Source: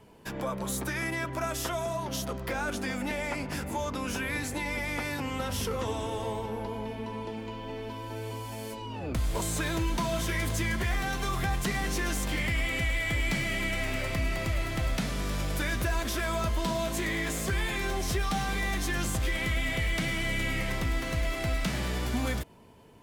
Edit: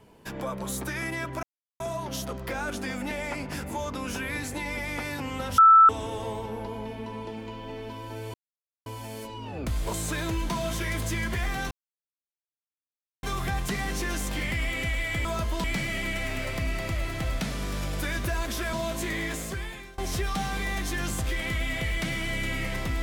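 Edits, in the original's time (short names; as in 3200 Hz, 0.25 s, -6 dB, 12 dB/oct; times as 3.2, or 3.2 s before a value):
1.43–1.8 mute
5.58–5.89 bleep 1320 Hz -11 dBFS
8.34 insert silence 0.52 s
11.19 insert silence 1.52 s
16.3–16.69 move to 13.21
17.22–17.94 fade out, to -23.5 dB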